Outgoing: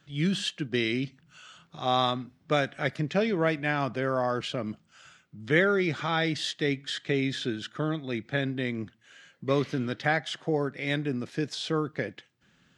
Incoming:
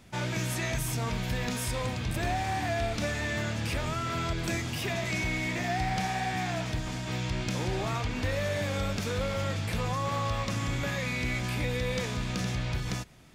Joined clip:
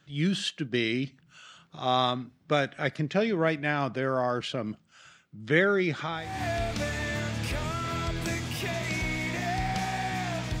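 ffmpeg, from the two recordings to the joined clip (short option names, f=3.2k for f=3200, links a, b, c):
-filter_complex "[0:a]apad=whole_dur=10.6,atrim=end=10.6,atrim=end=6.43,asetpts=PTS-STARTPTS[a];[1:a]atrim=start=2.23:end=6.82,asetpts=PTS-STARTPTS[b];[a][b]acrossfade=d=0.42:c1=qua:c2=qua"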